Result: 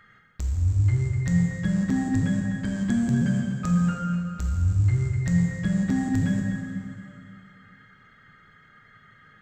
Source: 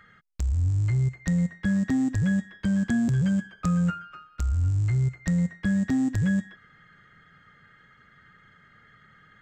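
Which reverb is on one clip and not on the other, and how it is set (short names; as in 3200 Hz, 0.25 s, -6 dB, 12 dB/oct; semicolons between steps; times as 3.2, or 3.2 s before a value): plate-style reverb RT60 2.5 s, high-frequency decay 0.8×, DRR -0.5 dB; gain -1.5 dB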